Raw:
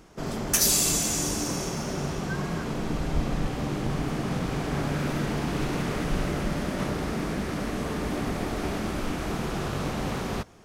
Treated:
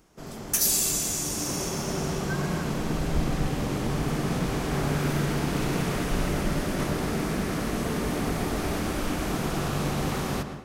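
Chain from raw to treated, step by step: high shelf 7900 Hz +9.5 dB; darkening echo 0.117 s, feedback 77%, low-pass 4700 Hz, level -10 dB; AGC gain up to 9 dB; gain -8.5 dB

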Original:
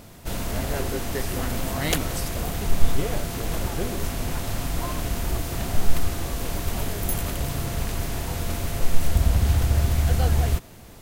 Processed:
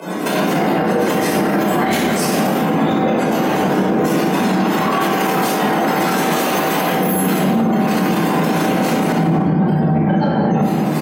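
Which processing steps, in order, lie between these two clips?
HPF 110 Hz 24 dB/oct; spectral gate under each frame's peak -20 dB strong; 4.64–6.9 low shelf 260 Hz -10 dB; compressor 10:1, threshold -34 dBFS, peak gain reduction 15.5 dB; soft clip -31 dBFS, distortion -19 dB; tremolo saw up 7.1 Hz, depth 65%; frequency shift +82 Hz; echo 0.201 s -15 dB; shoebox room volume 850 m³, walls mixed, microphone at 5.1 m; maximiser +27.5 dB; gain -7 dB

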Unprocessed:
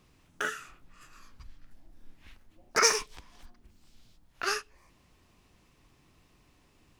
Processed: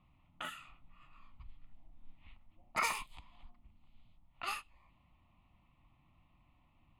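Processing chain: low-pass opened by the level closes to 2200 Hz, open at -28 dBFS; fixed phaser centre 1600 Hz, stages 6; gain -3 dB

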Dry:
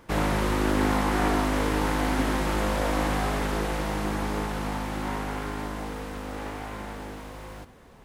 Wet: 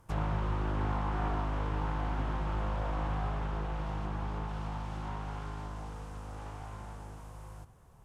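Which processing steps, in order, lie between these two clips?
dynamic EQ 3500 Hz, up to +5 dB, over -47 dBFS, Q 1.2; treble ducked by the level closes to 2700 Hz, closed at -23.5 dBFS; ten-band EQ 125 Hz +6 dB, 250 Hz -12 dB, 500 Hz -7 dB, 2000 Hz -11 dB, 4000 Hz -10 dB; gain -4 dB

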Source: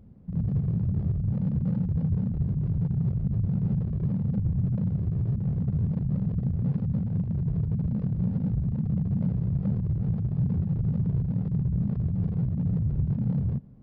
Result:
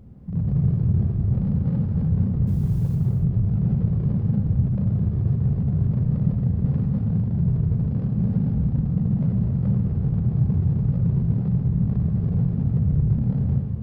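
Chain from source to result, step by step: in parallel at -2 dB: limiter -29 dBFS, peak gain reduction 10.5 dB; 2.47–2.95 on the sum: requantised 10-bit, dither triangular; non-linear reverb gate 0.33 s flat, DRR 1 dB

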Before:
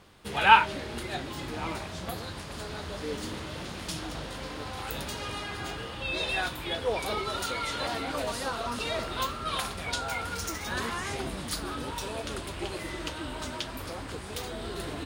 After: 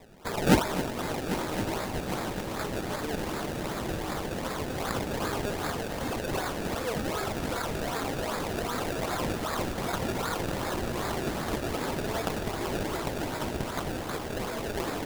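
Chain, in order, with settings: HPF 180 Hz 6 dB/oct; high shelf 3400 Hz +9.5 dB; in parallel at 0 dB: negative-ratio compressor -34 dBFS, ratio -0.5; on the sum: decimation with a swept rate 29×, swing 100% 2.6 Hz; multi-head echo 0.266 s, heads first and third, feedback 72%, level -13 dB; gain -5 dB

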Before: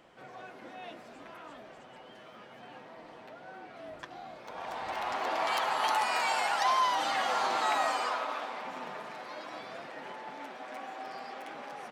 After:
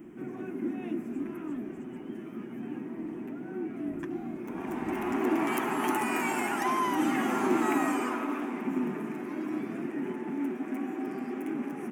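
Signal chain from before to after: EQ curve 110 Hz 0 dB, 240 Hz +13 dB, 360 Hz +12 dB, 520 Hz -14 dB, 1000 Hz -11 dB, 1400 Hz -10 dB, 2500 Hz -8 dB, 4200 Hz -28 dB, 6200 Hz -11 dB, 14000 Hz +3 dB; gain +8.5 dB

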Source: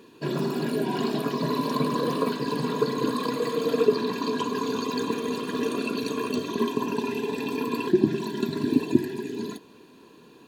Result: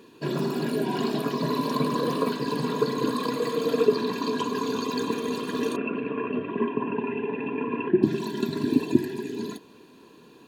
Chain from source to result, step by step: 5.76–8.03 Chebyshev band-pass 100–2800 Hz, order 5

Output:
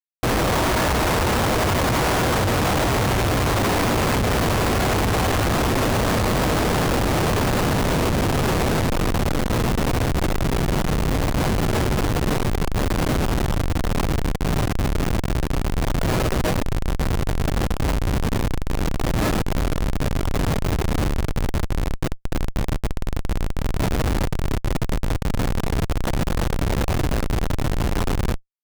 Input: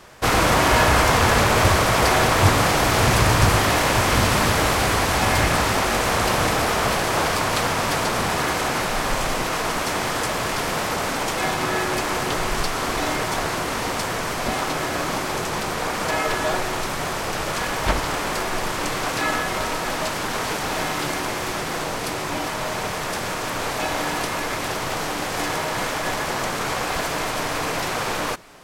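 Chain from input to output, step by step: rattling part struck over -18 dBFS, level -18 dBFS; diffused feedback echo 1.015 s, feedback 49%, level -7.5 dB; Schmitt trigger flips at -17 dBFS; gain +1.5 dB

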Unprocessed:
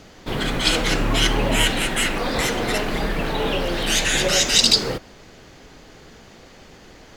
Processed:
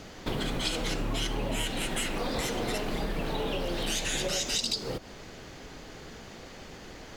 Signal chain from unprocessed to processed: dynamic EQ 1700 Hz, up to -5 dB, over -37 dBFS, Q 1.1; compressor 6:1, threshold -28 dBFS, peak gain reduction 16 dB

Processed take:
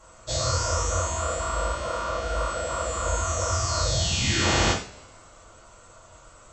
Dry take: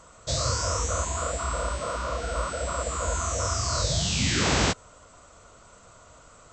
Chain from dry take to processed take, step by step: two-slope reverb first 0.39 s, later 1.9 s, from -27 dB, DRR -7.5 dB; gain -6.5 dB

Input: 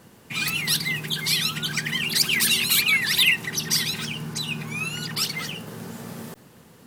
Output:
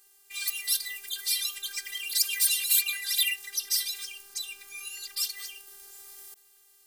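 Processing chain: pre-emphasis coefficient 0.97; robotiser 397 Hz

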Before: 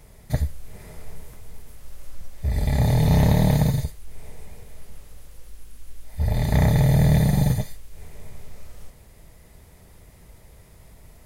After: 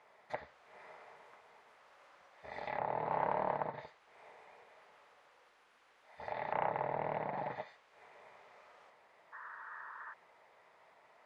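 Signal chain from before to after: ladder band-pass 1200 Hz, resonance 20%; treble ducked by the level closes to 1300 Hz, closed at -42.5 dBFS; painted sound noise, 9.32–10.14, 880–1900 Hz -58 dBFS; Doppler distortion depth 0.26 ms; gain +9 dB

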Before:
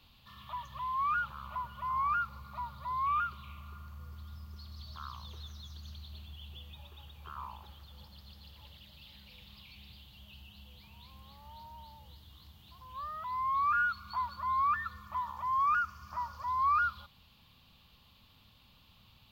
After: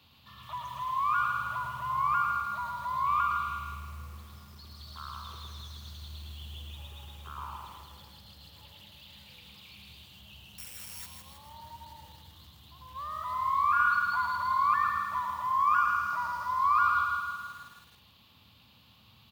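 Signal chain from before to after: HPF 73 Hz 24 dB/oct; feedback echo 0.109 s, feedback 52%, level -4 dB; 10.58–11.06 careless resampling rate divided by 8×, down none, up zero stuff; lo-fi delay 0.16 s, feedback 55%, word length 9-bit, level -6 dB; gain +1.5 dB

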